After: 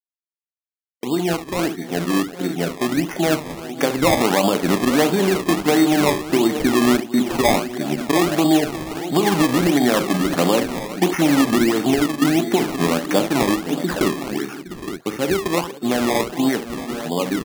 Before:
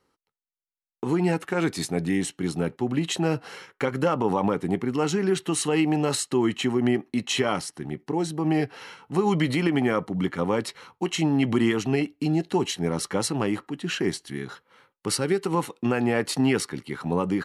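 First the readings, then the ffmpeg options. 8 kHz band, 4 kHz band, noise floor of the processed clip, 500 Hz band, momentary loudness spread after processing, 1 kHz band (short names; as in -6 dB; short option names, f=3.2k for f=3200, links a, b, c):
+5.0 dB, +6.5 dB, under -85 dBFS, +6.0 dB, 9 LU, +8.0 dB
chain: -af "equalizer=f=510:w=7.8:g=-5.5,dynaudnorm=f=440:g=17:m=11.5dB,agate=range=-33dB:threshold=-34dB:ratio=3:detection=peak,afftfilt=real='re*gte(hypot(re,im),0.0178)':imag='im*gte(hypot(re,im),0.0178)':win_size=1024:overlap=0.75,acompressor=threshold=-15dB:ratio=20,highpass=260,equalizer=f=410:t=q:w=4:g=-5,equalizer=f=630:t=q:w=4:g=6,equalizer=f=920:t=q:w=4:g=-6,equalizer=f=1.4k:t=q:w=4:g=-6,lowpass=f=2k:w=0.5412,lowpass=f=2k:w=1.3066,aecho=1:1:41|69|360|527|814|869:0.266|0.282|0.15|0.106|0.168|0.266,acrusher=samples=21:mix=1:aa=0.000001:lfo=1:lforange=21:lforate=1.5,volume=6dB"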